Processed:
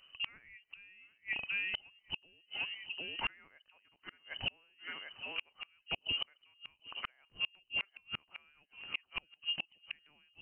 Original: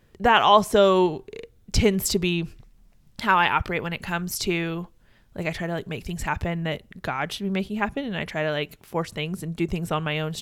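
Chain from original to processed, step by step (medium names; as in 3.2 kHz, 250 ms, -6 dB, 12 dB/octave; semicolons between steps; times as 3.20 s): frequency inversion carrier 3 kHz; thinning echo 753 ms, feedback 38%, high-pass 170 Hz, level -16 dB; inverted gate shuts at -19 dBFS, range -37 dB; trim -4 dB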